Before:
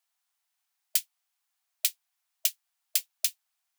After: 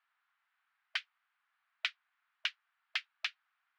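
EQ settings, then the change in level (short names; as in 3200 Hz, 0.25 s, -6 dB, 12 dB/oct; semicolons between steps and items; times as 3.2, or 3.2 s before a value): resonant high-pass 1400 Hz, resonance Q 2.2; air absorption 310 m; tape spacing loss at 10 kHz 24 dB; +11.5 dB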